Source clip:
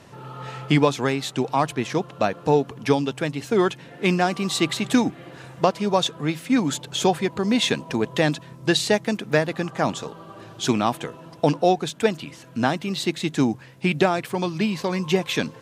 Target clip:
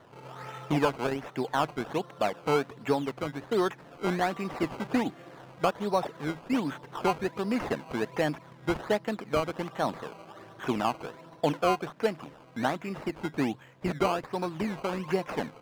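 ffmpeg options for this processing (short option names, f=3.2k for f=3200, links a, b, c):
-filter_complex "[0:a]acrossover=split=3400[a][b];[b]acompressor=threshold=-44dB:ratio=4:attack=1:release=60[c];[a][c]amix=inputs=2:normalize=0,acrusher=samples=17:mix=1:aa=0.000001:lfo=1:lforange=17:lforate=1.3,asplit=2[d][e];[e]highpass=f=720:p=1,volume=9dB,asoftclip=type=tanh:threshold=-5dB[f];[d][f]amix=inputs=2:normalize=0,lowpass=f=1.4k:p=1,volume=-6dB,volume=-6dB"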